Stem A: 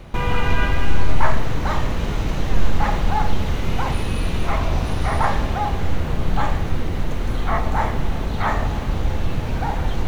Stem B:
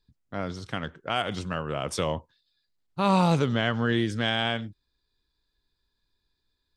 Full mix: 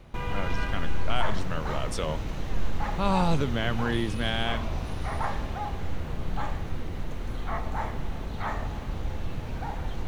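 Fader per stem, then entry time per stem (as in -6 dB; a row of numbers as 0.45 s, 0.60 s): -10.5 dB, -3.5 dB; 0.00 s, 0.00 s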